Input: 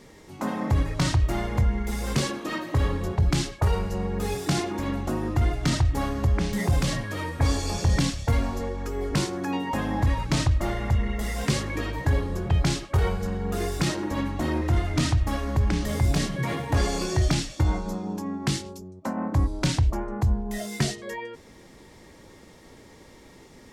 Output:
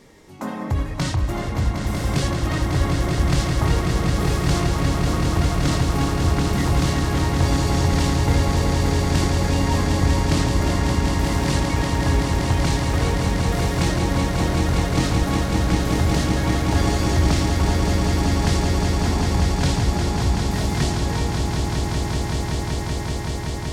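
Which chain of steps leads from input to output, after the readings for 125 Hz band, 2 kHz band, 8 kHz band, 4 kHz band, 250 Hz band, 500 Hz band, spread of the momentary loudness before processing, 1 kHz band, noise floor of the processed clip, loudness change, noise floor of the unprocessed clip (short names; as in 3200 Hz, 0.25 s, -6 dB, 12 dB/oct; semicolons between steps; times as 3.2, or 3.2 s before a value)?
+6.0 dB, +6.0 dB, +6.0 dB, +6.0 dB, +6.0 dB, +5.5 dB, 6 LU, +6.5 dB, -27 dBFS, +5.5 dB, -50 dBFS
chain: swelling echo 0.19 s, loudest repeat 8, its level -7 dB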